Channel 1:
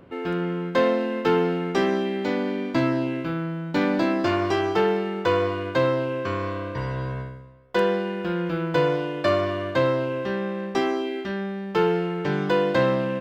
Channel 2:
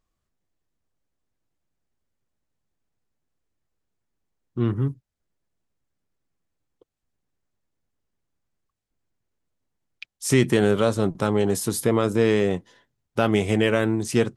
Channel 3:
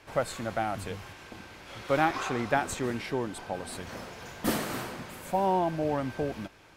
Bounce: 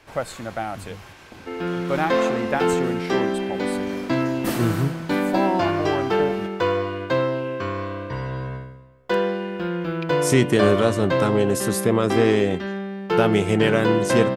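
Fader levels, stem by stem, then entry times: 0.0 dB, +1.0 dB, +2.0 dB; 1.35 s, 0.00 s, 0.00 s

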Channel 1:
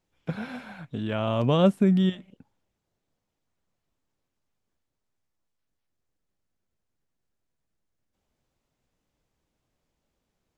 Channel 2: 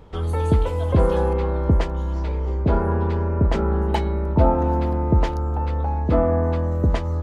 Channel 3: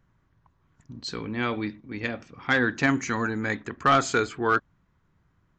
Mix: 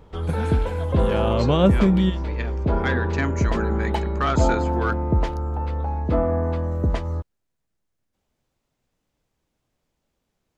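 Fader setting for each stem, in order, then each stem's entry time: +2.5 dB, -2.5 dB, -4.0 dB; 0.00 s, 0.00 s, 0.35 s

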